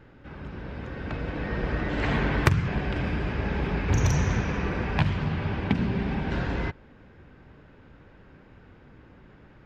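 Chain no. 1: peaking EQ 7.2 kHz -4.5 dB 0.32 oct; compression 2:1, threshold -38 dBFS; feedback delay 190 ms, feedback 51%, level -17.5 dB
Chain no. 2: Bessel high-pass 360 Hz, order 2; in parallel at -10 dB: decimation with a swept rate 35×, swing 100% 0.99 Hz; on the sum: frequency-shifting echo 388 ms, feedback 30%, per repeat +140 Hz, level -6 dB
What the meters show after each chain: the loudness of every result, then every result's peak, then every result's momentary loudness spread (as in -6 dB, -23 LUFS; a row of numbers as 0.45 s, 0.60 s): -36.5 LUFS, -31.0 LUFS; -17.5 dBFS, -4.5 dBFS; 19 LU, 15 LU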